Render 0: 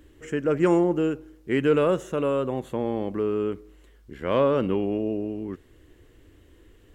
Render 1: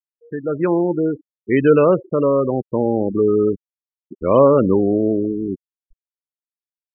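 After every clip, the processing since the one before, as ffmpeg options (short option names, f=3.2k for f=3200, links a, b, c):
-af "afftfilt=real='re*gte(hypot(re,im),0.0631)':imag='im*gte(hypot(re,im),0.0631)':win_size=1024:overlap=0.75,dynaudnorm=f=420:g=5:m=11.5dB"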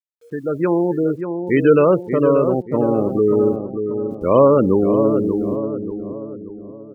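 -filter_complex "[0:a]acrusher=bits=9:mix=0:aa=0.000001,asplit=2[a][b];[b]adelay=584,lowpass=f=1.3k:p=1,volume=-7dB,asplit=2[c][d];[d]adelay=584,lowpass=f=1.3k:p=1,volume=0.46,asplit=2[e][f];[f]adelay=584,lowpass=f=1.3k:p=1,volume=0.46,asplit=2[g][h];[h]adelay=584,lowpass=f=1.3k:p=1,volume=0.46,asplit=2[i][j];[j]adelay=584,lowpass=f=1.3k:p=1,volume=0.46[k];[c][e][g][i][k]amix=inputs=5:normalize=0[l];[a][l]amix=inputs=2:normalize=0"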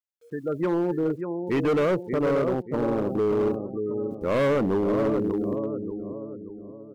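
-af "asoftclip=type=hard:threshold=-13.5dB,volume=-6dB"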